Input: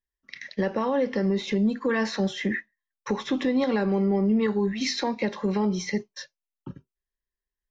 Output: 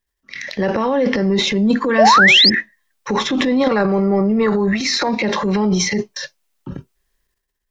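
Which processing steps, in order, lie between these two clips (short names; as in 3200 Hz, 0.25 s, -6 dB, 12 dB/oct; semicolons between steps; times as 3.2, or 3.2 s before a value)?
transient shaper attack -5 dB, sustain +10 dB; 3.68–5.09 thirty-one-band EQ 250 Hz -6 dB, 630 Hz +5 dB, 1250 Hz +9 dB, 3150 Hz -8 dB; in parallel at +0.5 dB: compressor, threshold -31 dBFS, peak gain reduction 12 dB; 1.98–2.5 on the sum: painted sound rise 550–5300 Hz -15 dBFS; gain +5 dB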